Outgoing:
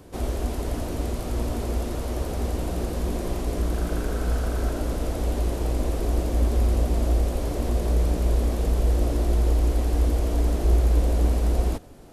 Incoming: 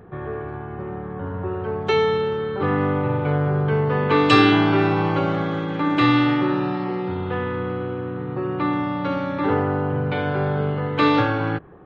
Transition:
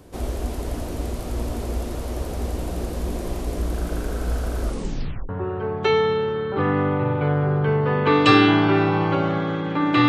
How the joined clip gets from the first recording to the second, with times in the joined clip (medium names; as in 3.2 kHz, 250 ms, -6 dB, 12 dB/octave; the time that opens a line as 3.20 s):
outgoing
4.62 s: tape stop 0.67 s
5.29 s: go over to incoming from 1.33 s